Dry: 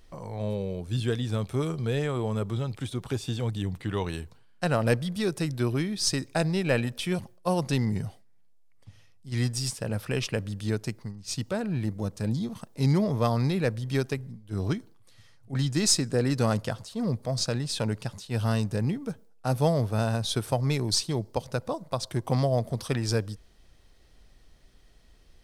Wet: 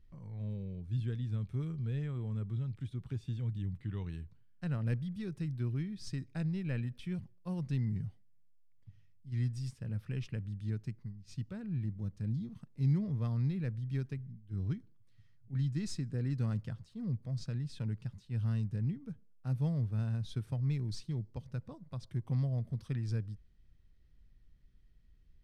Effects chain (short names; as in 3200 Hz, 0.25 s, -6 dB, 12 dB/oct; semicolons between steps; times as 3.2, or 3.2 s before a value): EQ curve 150 Hz 0 dB, 680 Hz -20 dB, 1900 Hz -11 dB, 9800 Hz -22 dB; gain -5 dB